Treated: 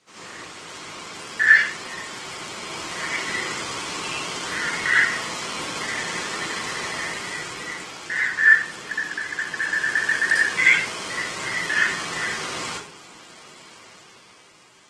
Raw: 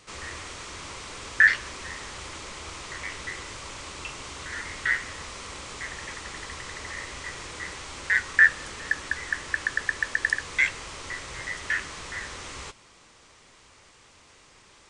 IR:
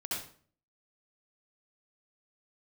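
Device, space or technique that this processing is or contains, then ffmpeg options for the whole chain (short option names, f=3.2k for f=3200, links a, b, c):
far-field microphone of a smart speaker: -filter_complex "[1:a]atrim=start_sample=2205[a];[0:a][a]afir=irnorm=-1:irlink=0,highpass=f=130:w=0.5412,highpass=f=130:w=1.3066,dynaudnorm=f=250:g=9:m=8.5dB,volume=-1dB" -ar 48000 -c:a libopus -b:a 16k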